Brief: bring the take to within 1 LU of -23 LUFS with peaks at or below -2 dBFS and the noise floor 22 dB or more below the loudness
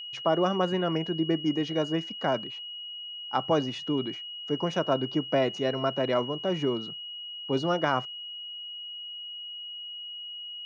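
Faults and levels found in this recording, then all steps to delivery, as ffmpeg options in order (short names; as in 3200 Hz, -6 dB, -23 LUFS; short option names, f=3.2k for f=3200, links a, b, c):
steady tone 2900 Hz; tone level -37 dBFS; loudness -29.5 LUFS; peak -12.0 dBFS; loudness target -23.0 LUFS
-> -af "bandreject=f=2.9k:w=30"
-af "volume=6.5dB"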